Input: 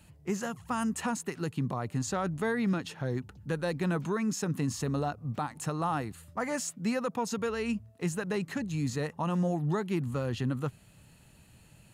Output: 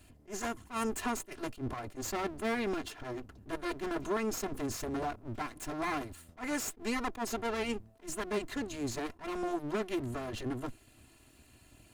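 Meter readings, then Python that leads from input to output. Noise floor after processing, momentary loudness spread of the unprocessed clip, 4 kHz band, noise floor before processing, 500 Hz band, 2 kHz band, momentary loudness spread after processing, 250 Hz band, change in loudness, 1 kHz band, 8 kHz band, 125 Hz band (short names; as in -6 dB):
-62 dBFS, 5 LU, -0.5 dB, -58 dBFS, -3.0 dB, -1.5 dB, 7 LU, -5.5 dB, -4.5 dB, -2.5 dB, -2.0 dB, -13.0 dB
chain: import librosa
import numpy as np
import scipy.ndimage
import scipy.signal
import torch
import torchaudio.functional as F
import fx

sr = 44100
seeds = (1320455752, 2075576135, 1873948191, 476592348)

y = fx.lower_of_two(x, sr, delay_ms=2.9)
y = fx.attack_slew(y, sr, db_per_s=260.0)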